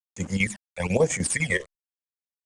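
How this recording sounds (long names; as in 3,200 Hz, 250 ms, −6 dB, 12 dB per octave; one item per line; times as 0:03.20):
a quantiser's noise floor 8 bits, dither none
chopped level 10 Hz, depth 65%, duty 70%
phaser sweep stages 12, 1.1 Hz, lowest notch 240–3,900 Hz
IMA ADPCM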